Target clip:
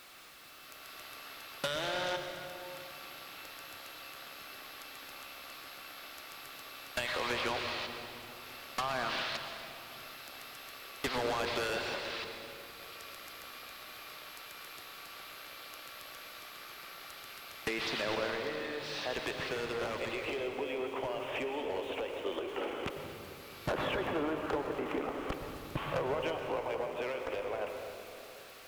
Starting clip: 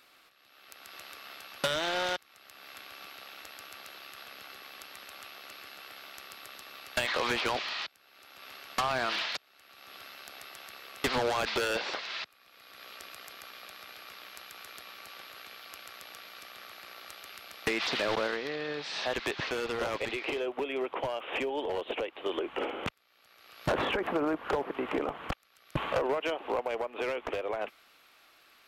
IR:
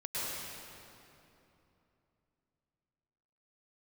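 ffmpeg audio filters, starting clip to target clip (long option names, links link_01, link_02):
-filter_complex "[0:a]aeval=exprs='val(0)+0.5*0.00562*sgn(val(0))':channel_layout=same,asplit=2[link_01][link_02];[1:a]atrim=start_sample=2205,lowshelf=frequency=210:gain=5.5[link_03];[link_02][link_03]afir=irnorm=-1:irlink=0,volume=-7.5dB[link_04];[link_01][link_04]amix=inputs=2:normalize=0,volume=-7.5dB"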